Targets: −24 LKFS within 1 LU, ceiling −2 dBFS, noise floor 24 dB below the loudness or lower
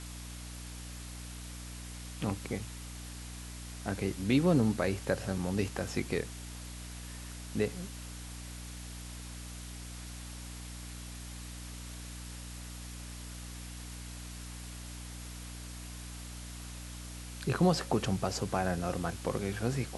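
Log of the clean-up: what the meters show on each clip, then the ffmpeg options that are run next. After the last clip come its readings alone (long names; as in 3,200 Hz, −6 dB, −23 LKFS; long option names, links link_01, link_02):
mains hum 60 Hz; hum harmonics up to 300 Hz; level of the hum −42 dBFS; background noise floor −44 dBFS; target noise floor −61 dBFS; integrated loudness −37.0 LKFS; sample peak −14.0 dBFS; target loudness −24.0 LKFS
→ -af "bandreject=frequency=60:width_type=h:width=4,bandreject=frequency=120:width_type=h:width=4,bandreject=frequency=180:width_type=h:width=4,bandreject=frequency=240:width_type=h:width=4,bandreject=frequency=300:width_type=h:width=4"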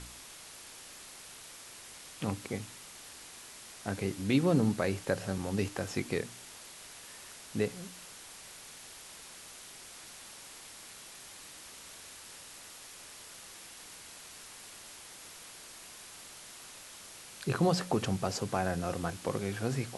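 mains hum none found; background noise floor −50 dBFS; target noise floor −62 dBFS
→ -af "afftdn=noise_reduction=12:noise_floor=-50"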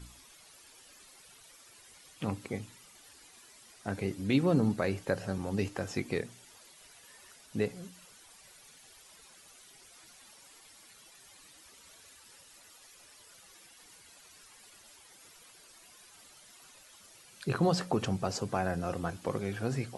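background noise floor −57 dBFS; integrated loudness −33.0 LKFS; sample peak −14.0 dBFS; target loudness −24.0 LKFS
→ -af "volume=9dB"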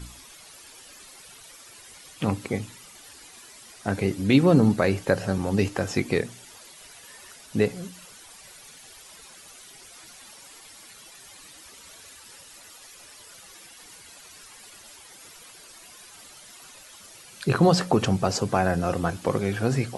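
integrated loudness −24.0 LKFS; sample peak −5.0 dBFS; background noise floor −48 dBFS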